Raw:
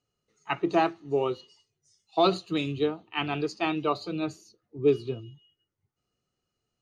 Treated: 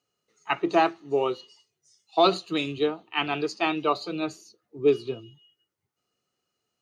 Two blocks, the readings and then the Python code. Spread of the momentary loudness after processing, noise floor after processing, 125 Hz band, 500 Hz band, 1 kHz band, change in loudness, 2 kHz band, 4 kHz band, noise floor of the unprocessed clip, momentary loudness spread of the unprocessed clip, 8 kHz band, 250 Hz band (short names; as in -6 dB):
11 LU, -82 dBFS, -4.5 dB, +2.0 dB, +3.5 dB, +2.5 dB, +4.0 dB, +4.0 dB, -84 dBFS, 11 LU, n/a, +0.5 dB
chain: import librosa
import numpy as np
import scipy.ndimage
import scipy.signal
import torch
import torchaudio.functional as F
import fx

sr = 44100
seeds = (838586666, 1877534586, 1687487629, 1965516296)

y = fx.highpass(x, sr, hz=350.0, slope=6)
y = y * librosa.db_to_amplitude(4.0)